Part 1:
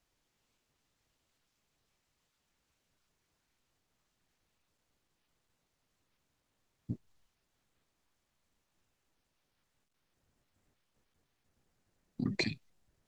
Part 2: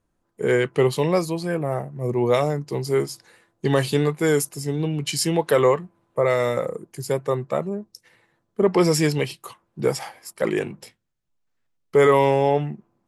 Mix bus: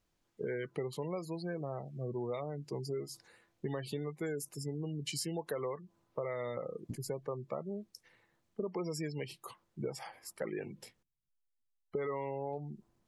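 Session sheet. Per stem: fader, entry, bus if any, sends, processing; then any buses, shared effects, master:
−3.0 dB, 0.00 s, muted 0:11.03–0:12.53, no send, no processing
−9.0 dB, 0.00 s, no send, gate on every frequency bin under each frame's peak −25 dB strong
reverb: not used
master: downward compressor 6 to 1, threshold −35 dBFS, peak gain reduction 13 dB

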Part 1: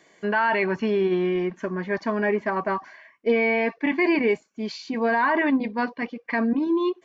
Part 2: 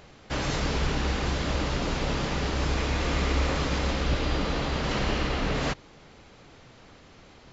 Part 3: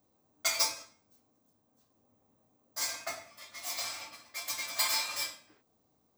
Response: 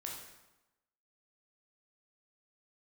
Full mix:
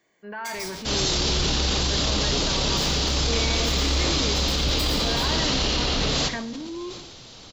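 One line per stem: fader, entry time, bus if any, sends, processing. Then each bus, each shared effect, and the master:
−13.5 dB, 0.00 s, send −7 dB, no processing
+2.5 dB, 0.55 s, send −9.5 dB, high shelf with overshoot 2,800 Hz +10 dB, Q 1.5; brickwall limiter −18 dBFS, peak gain reduction 5.5 dB
−9.5 dB, 0.00 s, send −3.5 dB, no processing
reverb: on, RT60 1.0 s, pre-delay 13 ms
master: transient designer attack −4 dB, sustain +6 dB

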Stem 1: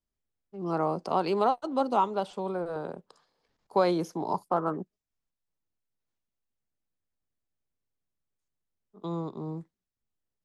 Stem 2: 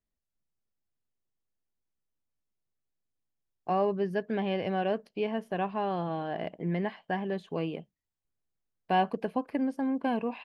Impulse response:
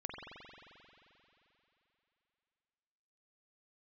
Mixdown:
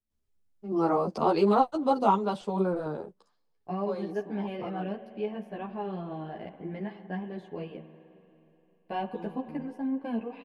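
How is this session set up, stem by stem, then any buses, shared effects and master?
+3.0 dB, 0.10 s, no send, automatic ducking −16 dB, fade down 0.90 s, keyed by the second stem
−7.0 dB, 0.00 s, send −8.5 dB, no processing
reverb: on, RT60 3.2 s, pre-delay 44 ms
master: low-shelf EQ 420 Hz +7 dB; string-ensemble chorus

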